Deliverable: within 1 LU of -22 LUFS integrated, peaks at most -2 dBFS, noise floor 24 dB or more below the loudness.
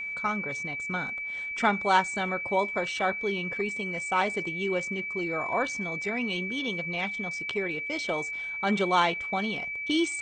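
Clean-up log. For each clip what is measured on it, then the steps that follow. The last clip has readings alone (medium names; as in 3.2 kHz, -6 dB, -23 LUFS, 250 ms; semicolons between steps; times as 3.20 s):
steady tone 2.3 kHz; tone level -32 dBFS; loudness -28.5 LUFS; peak level -9.0 dBFS; loudness target -22.0 LUFS
-> band-stop 2.3 kHz, Q 30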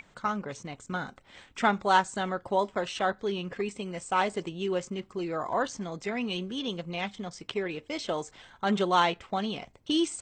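steady tone not found; loudness -30.5 LUFS; peak level -9.0 dBFS; loudness target -22.0 LUFS
-> trim +8.5 dB; peak limiter -2 dBFS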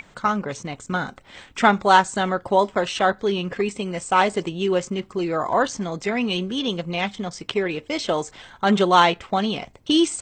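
loudness -22.0 LUFS; peak level -2.0 dBFS; noise floor -52 dBFS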